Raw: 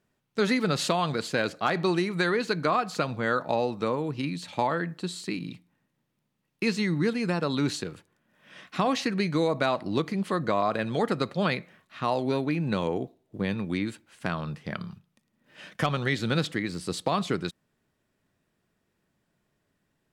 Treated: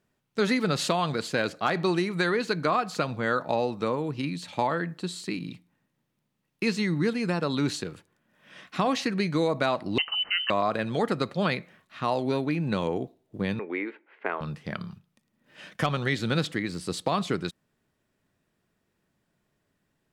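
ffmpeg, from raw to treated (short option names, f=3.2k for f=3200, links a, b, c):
-filter_complex "[0:a]asettb=1/sr,asplit=3[a][b][c];[a]atrim=end=9.984[d];[b]atrim=start=9.98:end=10.5,asetpts=PTS-STARTPTS,afade=t=in:d=0.004:c=qsin,afade=t=out:st=0.516:d=0.004:c=qsin,lowpass=f=2.7k:t=q:w=0.5098,lowpass=f=2.7k:t=q:w=0.6013,lowpass=f=2.7k:t=q:w=0.9,lowpass=f=2.7k:t=q:w=2.563,afreqshift=-3200[e];[c]atrim=start=10.496[f];[d][e]acrossfade=d=0.004:c1=hsin:c2=qsin[g];[g][f]acrossfade=d=0.004:c1=qsin:c2=hsin,asettb=1/sr,asplit=3[h][i][j];[h]atrim=end=13.594[k];[i]atrim=start=13.59:end=14.41,asetpts=PTS-STARTPTS,afade=t=in:d=0.004:c=qsin,afade=t=out:st=0.816:d=0.004:c=qsin,highpass=f=320:w=0.5412,highpass=f=320:w=1.3066,equalizer=f=420:t=q:w=4:g=9,equalizer=f=880:t=q:w=4:g=4,equalizer=f=2.1k:t=q:w=4:g=7,lowpass=f=2.4k:w=0.5412,lowpass=f=2.4k:w=1.3066[l];[j]atrim=start=14.406[m];[k][l]acrossfade=d=0.004:c1=hsin:c2=qsin[n];[n][m]acrossfade=d=0.004:c1=qsin:c2=hsin"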